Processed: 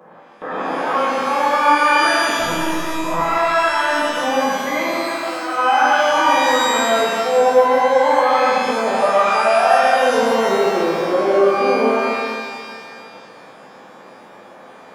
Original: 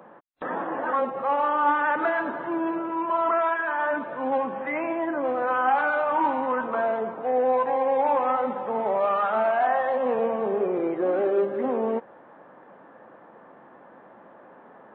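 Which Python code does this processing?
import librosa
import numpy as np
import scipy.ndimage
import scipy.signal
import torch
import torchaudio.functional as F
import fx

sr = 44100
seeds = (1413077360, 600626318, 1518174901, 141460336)

y = fx.highpass(x, sr, hz=1200.0, slope=12, at=(5.13, 5.55), fade=0.02)
y = y + 10.0 ** (-10.0 / 20.0) * np.pad(y, (int(127 * sr / 1000.0), 0))[:len(y)]
y = fx.lpc_vocoder(y, sr, seeds[0], excitation='pitch_kept', order=10, at=(2.4, 3.2))
y = fx.rev_shimmer(y, sr, seeds[1], rt60_s=2.0, semitones=12, shimmer_db=-8, drr_db=-6.5)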